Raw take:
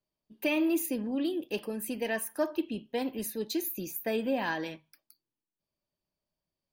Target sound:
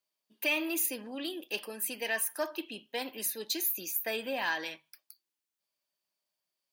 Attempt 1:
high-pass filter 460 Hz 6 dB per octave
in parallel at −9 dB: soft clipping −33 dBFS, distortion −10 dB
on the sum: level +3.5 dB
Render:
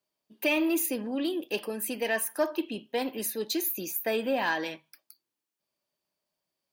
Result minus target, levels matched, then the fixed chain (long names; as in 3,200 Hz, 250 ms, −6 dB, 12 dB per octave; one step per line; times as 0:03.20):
500 Hz band +4.5 dB
high-pass filter 1,700 Hz 6 dB per octave
in parallel at −9 dB: soft clipping −33 dBFS, distortion −13 dB
on the sum: level +3.5 dB